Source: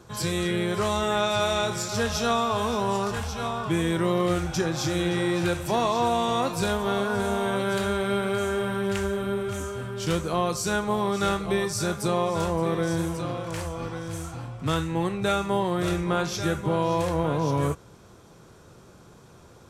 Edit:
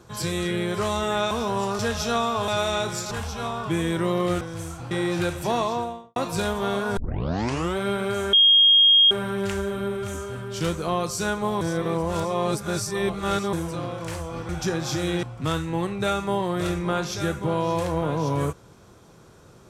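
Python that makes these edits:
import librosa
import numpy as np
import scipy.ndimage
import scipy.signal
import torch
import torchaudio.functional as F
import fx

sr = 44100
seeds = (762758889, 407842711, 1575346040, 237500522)

y = fx.studio_fade_out(x, sr, start_s=5.81, length_s=0.59)
y = fx.edit(y, sr, fx.swap(start_s=1.31, length_s=0.63, other_s=2.63, other_length_s=0.48),
    fx.swap(start_s=4.41, length_s=0.74, other_s=13.95, other_length_s=0.5),
    fx.tape_start(start_s=7.21, length_s=0.8),
    fx.insert_tone(at_s=8.57, length_s=0.78, hz=3250.0, db=-12.0),
    fx.reverse_span(start_s=11.07, length_s=1.92), tone=tone)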